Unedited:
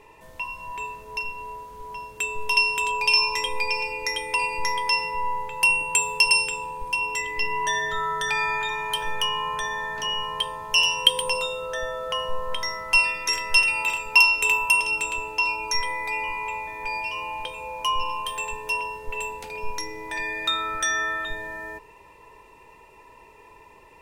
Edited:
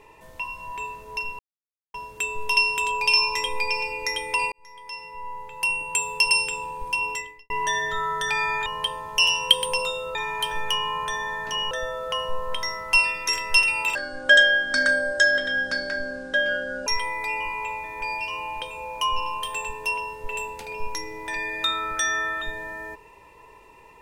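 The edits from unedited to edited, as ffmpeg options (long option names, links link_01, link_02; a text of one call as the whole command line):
ffmpeg -i in.wav -filter_complex "[0:a]asplit=10[link_01][link_02][link_03][link_04][link_05][link_06][link_07][link_08][link_09][link_10];[link_01]atrim=end=1.39,asetpts=PTS-STARTPTS,afade=type=out:start_time=1.386:duration=0.004:curve=hsin[link_11];[link_02]atrim=start=1.39:end=1.94,asetpts=PTS-STARTPTS,volume=0[link_12];[link_03]atrim=start=1.94:end=4.52,asetpts=PTS-STARTPTS,afade=type=in:duration=0.004:curve=hsin,afade=type=out:start_time=2.576:duration=0.004:curve=hsin[link_13];[link_04]atrim=start=4.52:end=7.5,asetpts=PTS-STARTPTS,afade=type=in:duration=2.06,afade=type=out:start_time=2.59:duration=0.39:curve=qua[link_14];[link_05]atrim=start=7.5:end=8.662,asetpts=PTS-STARTPTS,afade=type=in:duration=0.004:curve=hsin[link_15];[link_06]atrim=start=10.218:end=11.712[link_16];[link_07]atrim=start=8.658:end=10.222[link_17];[link_08]atrim=start=11.708:end=13.954[link_18];[link_09]atrim=start=13.95:end=15.7,asetpts=PTS-STARTPTS,asetrate=26460,aresample=44100[link_19];[link_10]atrim=start=15.696[link_20];[link_11][link_12][link_13][link_14][link_15]concat=n=5:v=0:a=1[link_21];[link_21][link_16]acrossfade=duration=0.004:curve1=hsin:curve2=hsin[link_22];[link_22][link_17]acrossfade=duration=0.004:curve1=hsin:curve2=hsin[link_23];[link_23][link_18]acrossfade=duration=0.004:curve1=hsin:curve2=hsin[link_24];[link_24][link_19]acrossfade=duration=0.004:curve1=hsin:curve2=hsin[link_25];[link_25][link_20]acrossfade=duration=0.004:curve1=hsin:curve2=hsin" out.wav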